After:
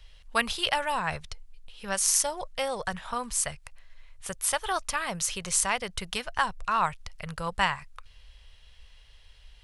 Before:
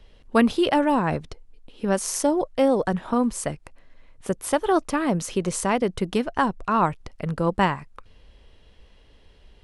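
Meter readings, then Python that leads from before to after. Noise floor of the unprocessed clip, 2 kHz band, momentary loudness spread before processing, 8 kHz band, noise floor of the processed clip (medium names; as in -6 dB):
-54 dBFS, +0.5 dB, 11 LU, +5.0 dB, -54 dBFS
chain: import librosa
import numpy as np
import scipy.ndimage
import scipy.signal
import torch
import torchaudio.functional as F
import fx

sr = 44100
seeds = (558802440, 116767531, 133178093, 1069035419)

y = fx.tone_stack(x, sr, knobs='10-0-10')
y = y * librosa.db_to_amplitude(5.5)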